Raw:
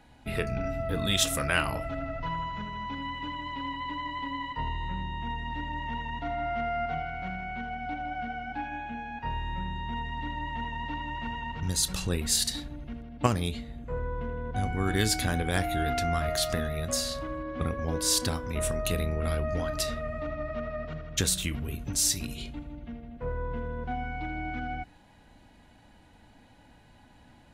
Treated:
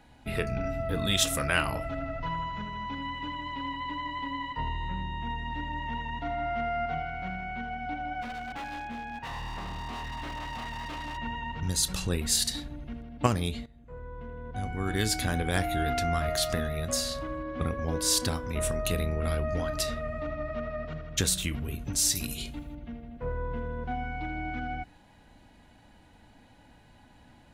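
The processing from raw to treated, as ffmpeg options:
ffmpeg -i in.wav -filter_complex "[0:a]asplit=3[link_01][link_02][link_03];[link_01]afade=type=out:start_time=8.21:duration=0.02[link_04];[link_02]aeval=exprs='0.0251*(abs(mod(val(0)/0.0251+3,4)-2)-1)':channel_layout=same,afade=type=in:start_time=8.21:duration=0.02,afade=type=out:start_time=11.16:duration=0.02[link_05];[link_03]afade=type=in:start_time=11.16:duration=0.02[link_06];[link_04][link_05][link_06]amix=inputs=3:normalize=0,asettb=1/sr,asplit=3[link_07][link_08][link_09];[link_07]atrim=end=22.154[link_10];[link_08]atrim=start=22.15:end=22.75,asetpts=PTS-STARTPTS,afade=type=in:duration=0.004:curve=qsin,afade=type=out:start_time=0.596:duration=0.004:curve=qsin,aemphasis=mode=production:type=50kf[link_11];[link_09]atrim=start=22.746[link_12];[link_10][link_11]acrossfade=duration=0.004:curve1=hsin:curve2=qsin[link_13];[link_13][link_12]acrossfade=duration=0.004:curve1=qsin:curve2=hsin,asplit=2[link_14][link_15];[link_14]atrim=end=13.66,asetpts=PTS-STARTPTS,afade=type=out:start_time=13.656:duration=0.004:curve=hsin:silence=0.16788[link_16];[link_15]atrim=start=13.66,asetpts=PTS-STARTPTS,afade=type=in:duration=1.81:silence=0.16788[link_17];[link_16][link_17]concat=n=2:v=0:a=1" out.wav

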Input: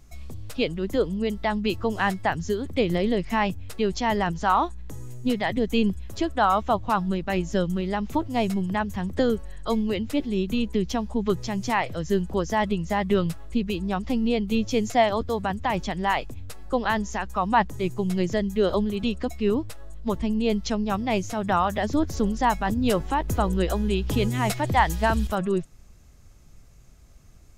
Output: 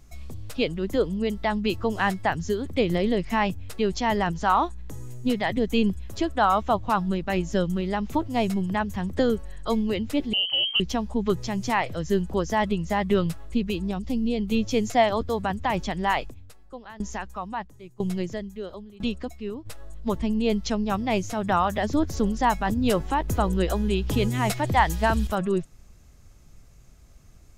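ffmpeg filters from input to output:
ffmpeg -i in.wav -filter_complex "[0:a]asettb=1/sr,asplit=3[link_01][link_02][link_03];[link_01]atrim=end=10.334[link_04];[link_02]atrim=start=10.33:end=10.8,asetpts=PTS-STARTPTS,afade=type=in:duration=0.004:curve=qsin,afade=type=out:start_time=0.466:duration=0.004:curve=qsin,lowpass=frequency=2700:width_type=q:width=0.5098,lowpass=frequency=2700:width_type=q:width=0.6013,lowpass=frequency=2700:width_type=q:width=0.9,lowpass=frequency=2700:width_type=q:width=2.563,afreqshift=-3200[link_05];[link_03]atrim=start=10.796[link_06];[link_04][link_05]acrossfade=duration=0.004:curve1=hsin:curve2=qsin[link_07];[link_07][link_06]acrossfade=duration=0.004:curve1=qsin:curve2=hsin,asettb=1/sr,asplit=3[link_08][link_09][link_10];[link_08]atrim=end=13.914[link_11];[link_09]atrim=start=13.91:end=14.39,asetpts=PTS-STARTPTS,afade=type=in:duration=0.004:curve=qsin,afade=type=out:start_time=0.476:duration=0.004:curve=qsin,equalizer=frequency=1300:width_type=o:width=2.4:gain=-10.5[link_12];[link_10]atrim=start=14.386[link_13];[link_11][link_12]acrossfade=duration=0.004:curve1=hsin:curve2=qsin[link_14];[link_14][link_13]acrossfade=duration=0.004:curve1=qsin:curve2=hsin,asplit=3[link_15][link_16][link_17];[link_15]afade=type=out:start_time=16.29:duration=0.02[link_18];[link_16]aeval=exprs='val(0)*pow(10,-21*if(lt(mod(1*n/s,1),2*abs(1)/1000),1-mod(1*n/s,1)/(2*abs(1)/1000),(mod(1*n/s,1)-2*abs(1)/1000)/(1-2*abs(1)/1000))/20)':channel_layout=same,afade=type=in:start_time=16.29:duration=0.02,afade=type=out:start_time=19.65:duration=0.02[link_19];[link_17]afade=type=in:start_time=19.65:duration=0.02[link_20];[link_18][link_19][link_20]amix=inputs=3:normalize=0" out.wav

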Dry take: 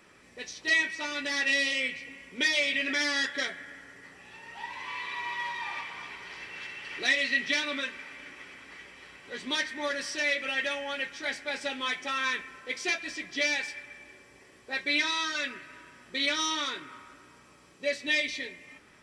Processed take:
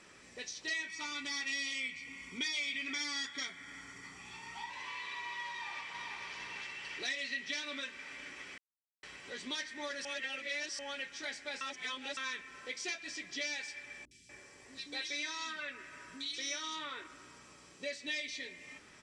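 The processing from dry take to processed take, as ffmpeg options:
ffmpeg -i in.wav -filter_complex "[0:a]asettb=1/sr,asplit=3[link_01][link_02][link_03];[link_01]atrim=end=0.884[link_04];[link_02]atrim=start=0.88:end=4.7,asetpts=PTS-STARTPTS,afade=type=in:duration=0.004:curve=qsin,afade=type=out:start_time=3.816:duration=0.004:curve=qsin,aecho=1:1:0.9:0.65,atrim=end_sample=168462[link_05];[link_03]atrim=start=4.696[link_06];[link_04][link_05]acrossfade=duration=0.004:curve1=hsin:curve2=qsin[link_07];[link_07][link_06]acrossfade=duration=0.004:curve1=qsin:curve2=hsin,asplit=2[link_08][link_09];[link_09]afade=type=in:start_time=5.49:duration=0.01,afade=type=out:start_time=6.17:duration=0.01,aecho=0:1:450|900|1350|1800|2250:0.595662|0.238265|0.0953059|0.0381224|0.015249[link_10];[link_08][link_10]amix=inputs=2:normalize=0,asettb=1/sr,asplit=3[link_11][link_12][link_13];[link_11]atrim=end=14.054[link_14];[link_12]atrim=start=14.05:end=17.07,asetpts=PTS-STARTPTS,afade=type=in:duration=0.004:curve=qsin,afade=type=out:start_time=3.016:duration=0.004:curve=qsin,acrossover=split=250|3100[link_15][link_16][link_17];[link_17]adelay=60[link_18];[link_16]adelay=240[link_19];[link_15][link_19][link_18]amix=inputs=3:normalize=0,atrim=end_sample=133182[link_20];[link_13]atrim=start=17.066[link_21];[link_14][link_20]acrossfade=duration=0.004:curve1=hsin:curve2=qsin[link_22];[link_22][link_21]acrossfade=duration=0.004:curve1=qsin:curve2=hsin,asplit=7[link_23][link_24][link_25][link_26][link_27][link_28][link_29];[link_23]atrim=end=8.58,asetpts=PTS-STARTPTS,afade=type=out:start_time=8.576:duration=0.004:curve=hsin[link_30];[link_24]atrim=start=8.58:end=9.03,asetpts=PTS-STARTPTS,volume=0[link_31];[link_25]atrim=start=9.03:end=10.052,asetpts=PTS-STARTPTS,afade=type=in:duration=0.004:curve=hsin[link_32];[link_26]atrim=start=10.048:end=10.792,asetpts=PTS-STARTPTS,areverse[link_33];[link_27]atrim=start=10.788:end=11.612[link_34];[link_28]atrim=start=11.608:end=12.172,asetpts=PTS-STARTPTS,areverse[link_35];[link_29]atrim=start=12.168[link_36];[link_30][link_31][link_32]concat=n=3:v=0:a=1[link_37];[link_37][link_33]acrossfade=duration=0.004:curve1=hsin:curve2=hsin[link_38];[link_38][link_34]acrossfade=duration=0.004:curve1=hsin:curve2=hsin[link_39];[link_39][link_35]acrossfade=duration=0.004:curve1=hsin:curve2=hsin[link_40];[link_40][link_36]acrossfade=duration=0.004:curve1=hsin:curve2=hsin,lowpass=frequency=7800:width=0.5412,lowpass=frequency=7800:width=1.3066,aemphasis=mode=production:type=50fm,acompressor=threshold=-43dB:ratio=2,volume=-1.5dB" out.wav

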